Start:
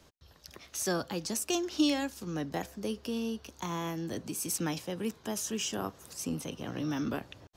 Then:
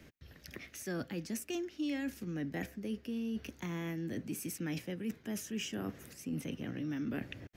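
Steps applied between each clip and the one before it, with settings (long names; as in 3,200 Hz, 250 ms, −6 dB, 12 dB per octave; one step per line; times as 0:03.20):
octave-band graphic EQ 125/250/1,000/2,000/4,000/8,000 Hz +3/+6/−11/+10/−6/−6 dB
reversed playback
downward compressor 4 to 1, threshold −39 dBFS, peak gain reduction 17.5 dB
reversed playback
level +2 dB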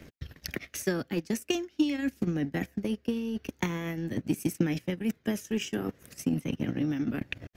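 phase shifter 0.44 Hz, delay 2.7 ms, feedback 22%
transient designer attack +10 dB, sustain −12 dB
level +5 dB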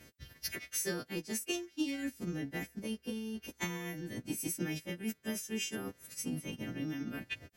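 every partial snapped to a pitch grid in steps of 2 semitones
level −7.5 dB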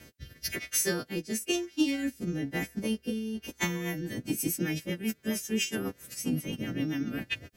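rotating-speaker cabinet horn 1 Hz, later 7.5 Hz, at 0:03.40
level +8.5 dB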